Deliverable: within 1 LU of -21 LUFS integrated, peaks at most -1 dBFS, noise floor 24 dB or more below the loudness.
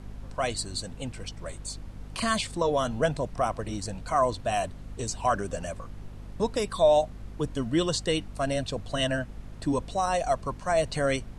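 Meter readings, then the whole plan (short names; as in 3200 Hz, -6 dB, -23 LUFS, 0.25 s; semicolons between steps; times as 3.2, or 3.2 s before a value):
hum 50 Hz; harmonics up to 250 Hz; hum level -40 dBFS; noise floor -44 dBFS; noise floor target -53 dBFS; loudness -28.5 LUFS; peak -11.0 dBFS; loudness target -21.0 LUFS
-> de-hum 50 Hz, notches 5; noise print and reduce 9 dB; gain +7.5 dB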